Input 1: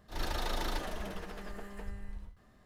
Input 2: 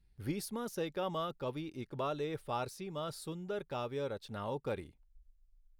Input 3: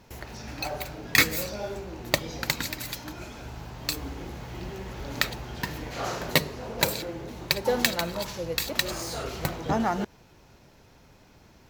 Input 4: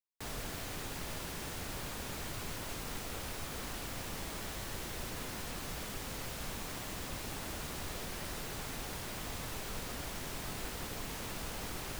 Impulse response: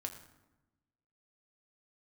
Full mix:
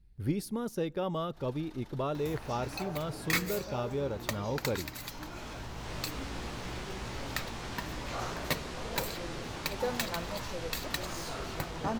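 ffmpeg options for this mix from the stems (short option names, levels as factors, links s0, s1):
-filter_complex "[0:a]acompressor=threshold=0.00891:ratio=3,adelay=1250,volume=0.266[s0];[1:a]lowshelf=f=460:g=8.5,volume=0.891,asplit=3[s1][s2][s3];[s2]volume=0.1[s4];[2:a]equalizer=f=1100:t=o:w=0.71:g=5,acompressor=mode=upward:threshold=0.0398:ratio=2.5,asoftclip=type=hard:threshold=0.2,adelay=2150,volume=0.376[s5];[3:a]lowpass=5800,dynaudnorm=f=310:g=9:m=4.22,flanger=delay=16.5:depth=2.2:speed=0.51,adelay=950,volume=0.376[s6];[s3]apad=whole_len=570984[s7];[s6][s7]sidechaincompress=threshold=0.00126:ratio=8:attack=16:release=305[s8];[4:a]atrim=start_sample=2205[s9];[s4][s9]afir=irnorm=-1:irlink=0[s10];[s0][s1][s5][s8][s10]amix=inputs=5:normalize=0"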